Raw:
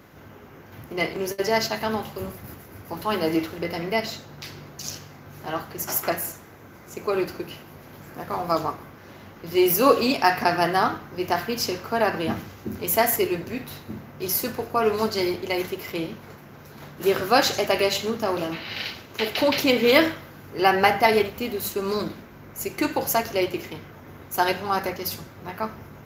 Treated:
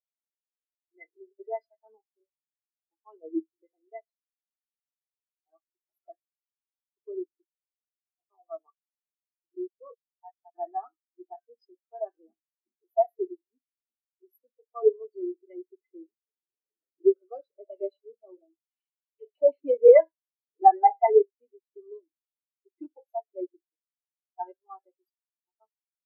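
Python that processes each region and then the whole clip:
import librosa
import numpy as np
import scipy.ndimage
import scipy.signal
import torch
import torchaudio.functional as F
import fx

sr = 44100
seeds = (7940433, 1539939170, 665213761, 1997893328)

y = fx.chain(x, sr, fx.lowpass(hz=1900.0, slope=6),
    fx.peak_eq(hz=150.0, db=-14.0, octaves=1.4),
    fx.level_steps(step_db=23), at=(9.55, 10.55))
y = fx.chain(y, sr, fx.notch_comb(f0_hz=830.0),
    fx.band_squash(depth_pct=70), at=(15.01, 17.83))
y = fx.chain(y, sr, fx.highpass(hz=380.0, slope=24),
    fx.peak_eq(hz=1000.0, db=6.5, octaves=0.71), at=(19.88, 20.62))
y = scipy.signal.sosfilt(scipy.signal.butter(4, 270.0, 'highpass', fs=sr, output='sos'), y)
y = fx.spectral_expand(y, sr, expansion=4.0)
y = F.gain(torch.from_numpy(y), -2.5).numpy()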